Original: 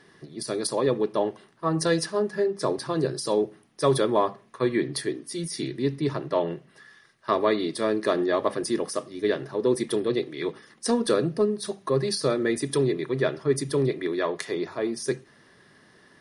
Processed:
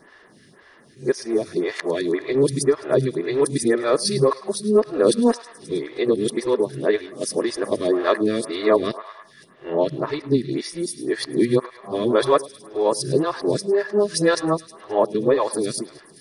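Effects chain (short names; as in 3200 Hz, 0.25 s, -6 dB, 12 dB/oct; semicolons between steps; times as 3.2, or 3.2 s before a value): whole clip reversed; thinning echo 0.105 s, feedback 71%, high-pass 740 Hz, level -16 dB; photocell phaser 1.9 Hz; gain +7.5 dB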